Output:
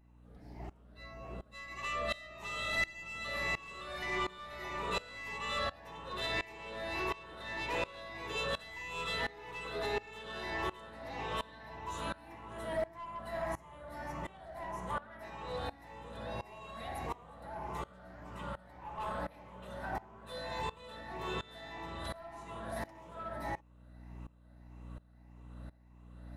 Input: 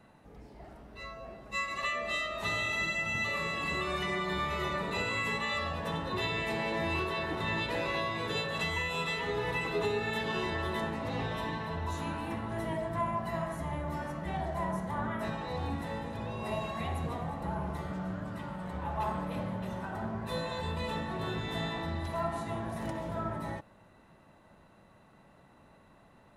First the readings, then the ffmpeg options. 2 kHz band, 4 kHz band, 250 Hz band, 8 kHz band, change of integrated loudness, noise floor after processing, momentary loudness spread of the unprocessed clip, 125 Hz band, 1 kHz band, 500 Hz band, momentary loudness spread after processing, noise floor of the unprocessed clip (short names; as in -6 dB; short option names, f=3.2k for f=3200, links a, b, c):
-5.0 dB, -4.0 dB, -10.5 dB, -4.0 dB, -6.0 dB, -59 dBFS, 7 LU, -11.0 dB, -5.0 dB, -5.5 dB, 16 LU, -60 dBFS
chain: -filter_complex "[0:a]afftfilt=real='re*pow(10,7/40*sin(2*PI*(0.73*log(max(b,1)*sr/1024/100)/log(2)-(1.7)*(pts-256)/sr)))':imag='im*pow(10,7/40*sin(2*PI*(0.73*log(max(b,1)*sr/1024/100)/log(2)-(1.7)*(pts-256)/sr)))':win_size=1024:overlap=0.75,acrossover=split=360|620|4300[a][b][c][d];[a]acompressor=threshold=-47dB:ratio=16[e];[e][b][c][d]amix=inputs=4:normalize=0,aeval=exprs='val(0)+0.00501*(sin(2*PI*60*n/s)+sin(2*PI*2*60*n/s)/2+sin(2*PI*3*60*n/s)/3+sin(2*PI*4*60*n/s)/4+sin(2*PI*5*60*n/s)/5)':c=same,asoftclip=type=tanh:threshold=-24dB,aeval=exprs='0.0596*(cos(1*acos(clip(val(0)/0.0596,-1,1)))-cos(1*PI/2))+0.00668*(cos(2*acos(clip(val(0)/0.0596,-1,1)))-cos(2*PI/2))+0.0015*(cos(5*acos(clip(val(0)/0.0596,-1,1)))-cos(5*PI/2))':c=same,aeval=exprs='val(0)*pow(10,-21*if(lt(mod(-1.4*n/s,1),2*abs(-1.4)/1000),1-mod(-1.4*n/s,1)/(2*abs(-1.4)/1000),(mod(-1.4*n/s,1)-2*abs(-1.4)/1000)/(1-2*abs(-1.4)/1000))/20)':c=same,volume=2dB"